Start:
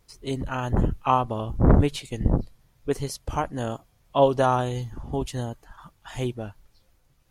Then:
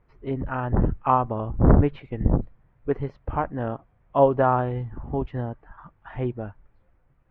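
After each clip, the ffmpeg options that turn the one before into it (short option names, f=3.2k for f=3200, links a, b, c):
-af "lowpass=f=2k:w=0.5412,lowpass=f=2k:w=1.3066,volume=1dB"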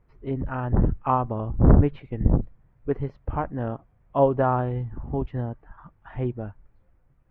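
-af "lowshelf=f=370:g=5,volume=-3.5dB"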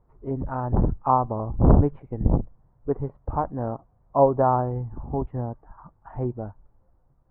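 -af "lowpass=f=940:t=q:w=1.7,volume=-1dB"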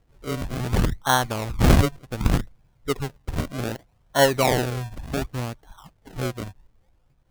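-af "acrusher=samples=35:mix=1:aa=0.000001:lfo=1:lforange=35:lforate=0.66"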